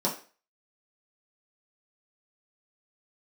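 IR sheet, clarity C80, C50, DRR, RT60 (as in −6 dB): 14.5 dB, 9.5 dB, −5.5 dB, 0.40 s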